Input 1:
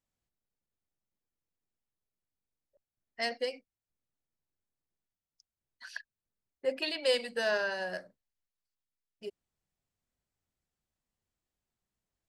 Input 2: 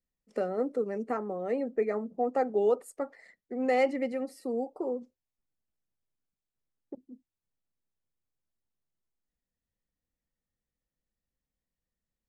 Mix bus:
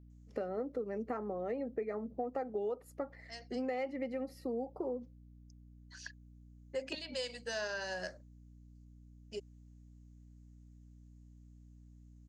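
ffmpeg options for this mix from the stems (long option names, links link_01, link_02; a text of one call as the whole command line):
ffmpeg -i stem1.wav -i stem2.wav -filter_complex "[0:a]lowpass=frequency=6700:width_type=q:width=6,adelay=100,volume=-1dB[link_01];[1:a]equalizer=frequency=8500:width_type=o:width=0.44:gain=-14.5,aeval=exprs='val(0)+0.002*(sin(2*PI*60*n/s)+sin(2*PI*2*60*n/s)/2+sin(2*PI*3*60*n/s)/3+sin(2*PI*4*60*n/s)/4+sin(2*PI*5*60*n/s)/5)':channel_layout=same,volume=-1.5dB,asplit=2[link_02][link_03];[link_03]apad=whole_len=546220[link_04];[link_01][link_04]sidechaincompress=threshold=-49dB:ratio=4:attack=11:release=1450[link_05];[link_05][link_02]amix=inputs=2:normalize=0,acompressor=threshold=-34dB:ratio=6" out.wav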